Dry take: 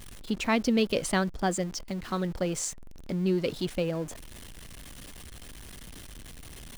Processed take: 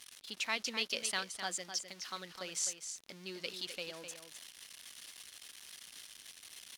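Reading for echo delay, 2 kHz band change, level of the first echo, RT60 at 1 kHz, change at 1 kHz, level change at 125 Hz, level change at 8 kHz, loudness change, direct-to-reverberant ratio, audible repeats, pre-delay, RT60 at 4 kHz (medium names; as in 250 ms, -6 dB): 256 ms, -4.5 dB, -8.5 dB, no reverb, -11.0 dB, -25.5 dB, -2.0 dB, -10.0 dB, no reverb, 1, no reverb, no reverb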